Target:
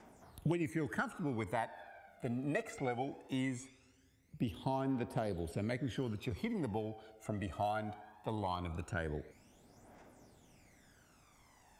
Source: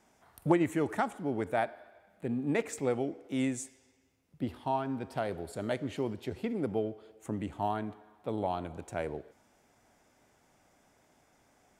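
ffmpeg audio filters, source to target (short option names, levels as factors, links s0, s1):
-filter_complex "[0:a]aphaser=in_gain=1:out_gain=1:delay=1.6:decay=0.67:speed=0.2:type=triangular,acrossover=split=2100|4400[s0][s1][s2];[s0]acompressor=threshold=0.02:ratio=4[s3];[s1]acompressor=threshold=0.00251:ratio=4[s4];[s2]acompressor=threshold=0.00112:ratio=4[s5];[s3][s4][s5]amix=inputs=3:normalize=0"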